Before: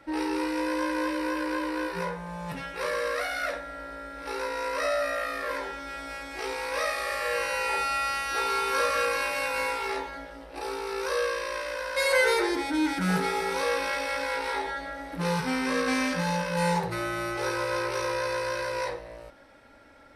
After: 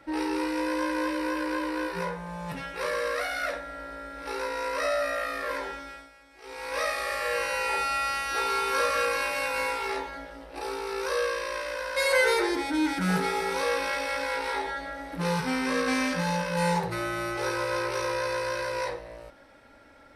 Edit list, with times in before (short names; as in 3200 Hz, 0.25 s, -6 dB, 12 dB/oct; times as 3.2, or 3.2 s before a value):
5.72–6.8 dip -17 dB, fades 0.39 s